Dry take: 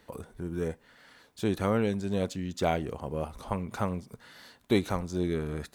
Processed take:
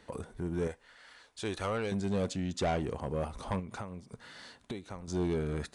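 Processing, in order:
0:00.67–0:01.92: parametric band 180 Hz −13 dB 2.4 octaves
0:03.59–0:05.08: downward compressor 12 to 1, threshold −39 dBFS, peak gain reduction 19.5 dB
soft clipping −26.5 dBFS, distortion −11 dB
downsampling to 22,050 Hz
level +1.5 dB

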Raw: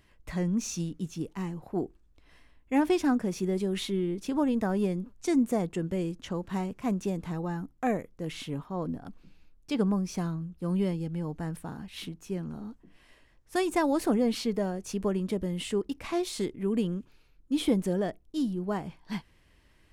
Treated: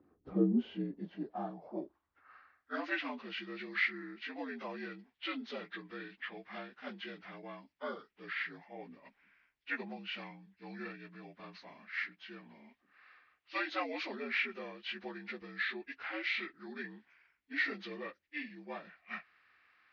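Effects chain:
partials spread apart or drawn together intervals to 78%
band-pass filter sweep 320 Hz → 2,100 Hz, 0:00.28–0:02.80
level +8 dB

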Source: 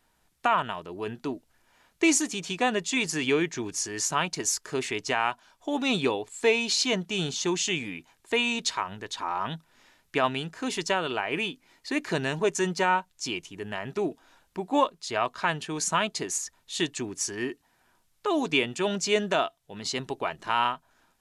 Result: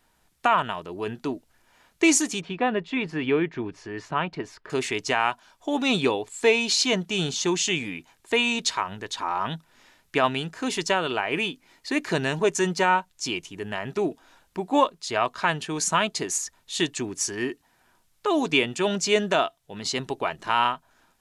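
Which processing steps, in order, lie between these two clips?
0:02.41–0:04.70: high-frequency loss of the air 420 metres
level +3 dB

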